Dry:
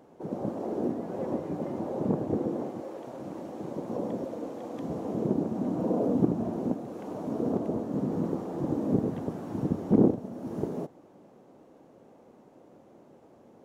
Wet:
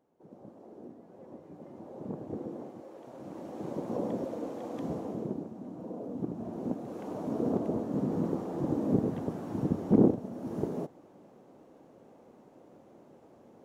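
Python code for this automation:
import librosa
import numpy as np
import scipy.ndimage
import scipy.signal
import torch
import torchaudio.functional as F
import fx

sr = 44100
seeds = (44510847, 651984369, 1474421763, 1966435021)

y = fx.gain(x, sr, db=fx.line((1.22, -18.0), (2.39, -9.0), (2.89, -9.0), (3.68, -0.5), (4.89, -0.5), (5.57, -13.0), (6.09, -13.0), (6.91, -1.0)))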